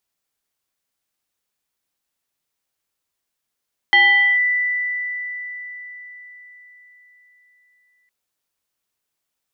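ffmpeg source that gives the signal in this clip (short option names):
-f lavfi -i "aevalsrc='0.376*pow(10,-3*t/4.71)*sin(2*PI*1980*t+0.73*clip(1-t/0.46,0,1)*sin(2*PI*0.59*1980*t))':d=4.16:s=44100"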